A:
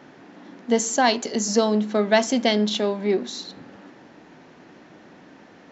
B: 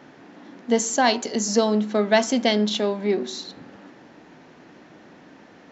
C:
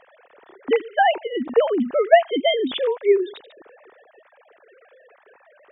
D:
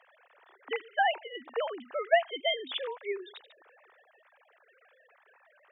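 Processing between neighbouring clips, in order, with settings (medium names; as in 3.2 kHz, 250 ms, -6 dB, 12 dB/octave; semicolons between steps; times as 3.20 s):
de-hum 188.1 Hz, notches 8
formants replaced by sine waves; trim +2 dB
high-pass 830 Hz 12 dB/octave; trim -6 dB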